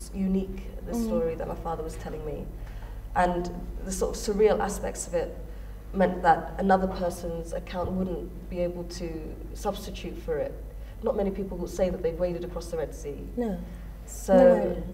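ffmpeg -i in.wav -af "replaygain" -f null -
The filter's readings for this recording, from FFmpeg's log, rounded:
track_gain = +8.6 dB
track_peak = 0.321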